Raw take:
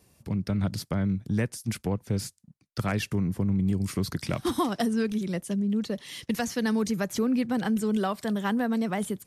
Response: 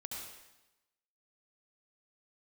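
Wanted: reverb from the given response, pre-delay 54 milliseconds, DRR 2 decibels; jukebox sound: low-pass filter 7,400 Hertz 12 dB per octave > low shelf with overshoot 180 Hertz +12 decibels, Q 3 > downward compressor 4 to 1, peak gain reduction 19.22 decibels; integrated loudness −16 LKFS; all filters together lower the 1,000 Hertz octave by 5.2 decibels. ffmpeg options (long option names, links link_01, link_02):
-filter_complex "[0:a]equalizer=frequency=1000:width_type=o:gain=-6.5,asplit=2[link_01][link_02];[1:a]atrim=start_sample=2205,adelay=54[link_03];[link_02][link_03]afir=irnorm=-1:irlink=0,volume=-0.5dB[link_04];[link_01][link_04]amix=inputs=2:normalize=0,lowpass=7400,lowshelf=frequency=180:width_type=q:width=3:gain=12,acompressor=threshold=-29dB:ratio=4,volume=15dB"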